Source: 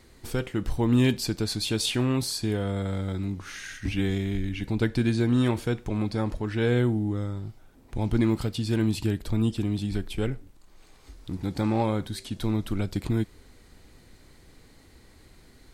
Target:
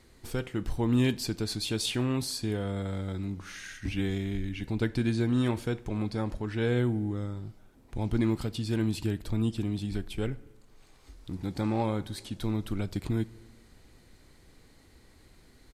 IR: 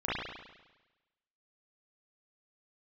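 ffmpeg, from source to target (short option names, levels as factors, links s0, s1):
-filter_complex "[0:a]asplit=2[s0][s1];[1:a]atrim=start_sample=2205,asetrate=33957,aresample=44100[s2];[s1][s2]afir=irnorm=-1:irlink=0,volume=0.0251[s3];[s0][s3]amix=inputs=2:normalize=0,aresample=32000,aresample=44100,volume=0.631"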